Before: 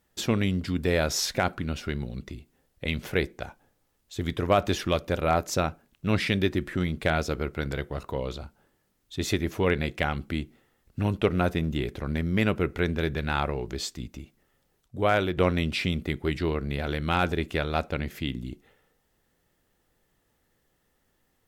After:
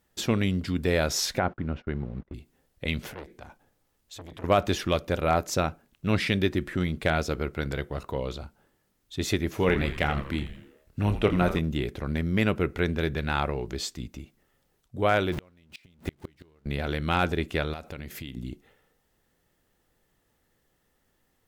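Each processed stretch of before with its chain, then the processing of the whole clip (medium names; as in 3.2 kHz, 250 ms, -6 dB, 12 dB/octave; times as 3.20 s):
1.39–2.34 s: send-on-delta sampling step -46.5 dBFS + gate -40 dBFS, range -24 dB + low-pass 1.6 kHz
3.13–4.44 s: compression 1.5:1, threshold -39 dBFS + transformer saturation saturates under 1.8 kHz
9.50–11.59 s: doubling 28 ms -9.5 dB + frequency-shifting echo 83 ms, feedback 47%, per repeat -140 Hz, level -10.5 dB
15.32–16.66 s: jump at every zero crossing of -32.5 dBFS + inverted gate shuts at -18 dBFS, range -35 dB
17.73–18.37 s: treble shelf 6.3 kHz +7.5 dB + compression 8:1, threshold -34 dBFS
whole clip: none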